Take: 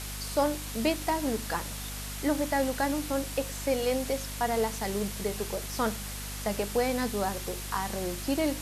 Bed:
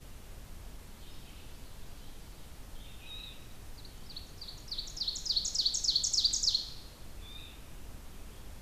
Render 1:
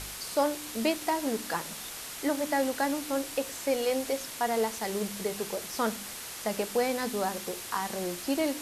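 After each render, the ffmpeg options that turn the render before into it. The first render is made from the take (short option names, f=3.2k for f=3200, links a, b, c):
-af "bandreject=f=50:t=h:w=4,bandreject=f=100:t=h:w=4,bandreject=f=150:t=h:w=4,bandreject=f=200:t=h:w=4,bandreject=f=250:t=h:w=4,bandreject=f=300:t=h:w=4"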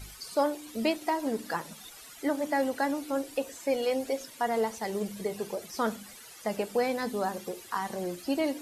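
-af "afftdn=nr=14:nf=-41"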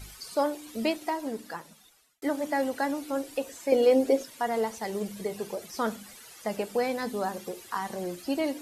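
-filter_complex "[0:a]asettb=1/sr,asplit=3[a][b][c];[a]atrim=end=3.724[d];[b]atrim=start=3.72:end=4.23,asetpts=PTS-STARTPTS,afade=t=in:d=0.004:c=qsin,afade=t=out:st=0.506:d=0.004:c=qsin,equalizer=f=350:w=0.87:g=12[e];[c]atrim=start=4.226[f];[d][e]acrossfade=d=0.004:c1=hsin:c2=qsin[g];[g][f]acrossfade=d=0.004:c1=qsin:c2=hsin,asplit=2[h][i];[h]atrim=end=2.22,asetpts=PTS-STARTPTS,afade=t=out:st=0.9:d=1.32[j];[i]atrim=start=2.22,asetpts=PTS-STARTPTS,afade=t=in:d=0.004:c=hsin[k];[j][k]concat=n=2:v=0:a=1"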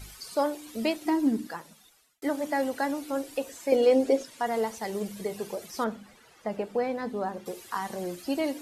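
-filter_complex "[0:a]asettb=1/sr,asplit=3[a][b][c];[a]atrim=end=1.054[d];[b]atrim=start=1.05:end=1.47,asetpts=PTS-STARTPTS,afade=t=in:d=0.004:c=qsin,afade=t=out:st=0.416:d=0.004:c=qsin,lowshelf=f=390:t=q:w=3:g=7[e];[c]atrim=start=1.466[f];[d][e]acrossfade=d=0.004:c1=hsin:c2=qsin[g];[g][f]acrossfade=d=0.004:c1=qsin:c2=hsin,asettb=1/sr,asplit=3[h][i][j];[h]atrim=end=3.764[k];[i]atrim=start=3.76:end=4.46,asetpts=PTS-STARTPTS,afade=t=in:d=0.004:c=qsin,afade=t=out:st=0.696:d=0.004:c=qsin,lowpass=10k[l];[j]atrim=start=4.456[m];[k][l]acrossfade=d=0.004:c1=hsin:c2=qsin[n];[n][m]acrossfade=d=0.004:c1=qsin:c2=hsin,asettb=1/sr,asplit=3[o][p][q];[o]atrim=end=5.844[r];[p]atrim=start=5.84:end=7.46,asetpts=PTS-STARTPTS,afade=t=in:d=0.004:c=qsin,afade=t=out:st=1.616:d=0.004:c=qsin,lowpass=f=1.5k:p=1[s];[q]atrim=start=7.456[t];[r][s]acrossfade=d=0.004:c1=hsin:c2=qsin[u];[u][t]acrossfade=d=0.004:c1=qsin:c2=hsin"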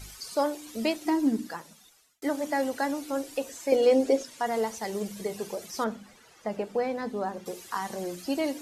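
-af "equalizer=f=6.2k:t=o:w=0.77:g=4,bandreject=f=60.7:t=h:w=4,bandreject=f=121.4:t=h:w=4,bandreject=f=182.1:t=h:w=4,bandreject=f=242.8:t=h:w=4"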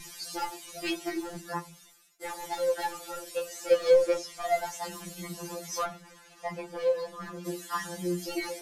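-filter_complex "[0:a]asplit=2[a][b];[b]aeval=exprs='0.0562*(abs(mod(val(0)/0.0562+3,4)-2)-1)':c=same,volume=-5.5dB[c];[a][c]amix=inputs=2:normalize=0,afftfilt=real='re*2.83*eq(mod(b,8),0)':imag='im*2.83*eq(mod(b,8),0)':win_size=2048:overlap=0.75"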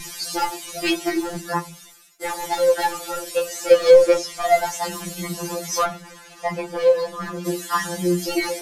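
-af "volume=10.5dB,alimiter=limit=-3dB:level=0:latency=1"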